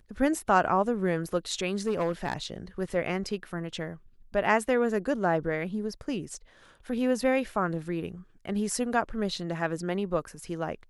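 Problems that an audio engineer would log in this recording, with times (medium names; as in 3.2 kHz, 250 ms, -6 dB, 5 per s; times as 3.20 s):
1.87–2.33 s: clipped -22.5 dBFS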